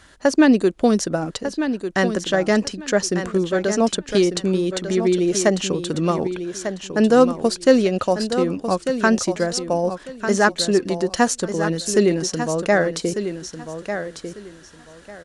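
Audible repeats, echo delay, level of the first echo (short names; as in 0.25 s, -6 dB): 2, 1.197 s, -9.0 dB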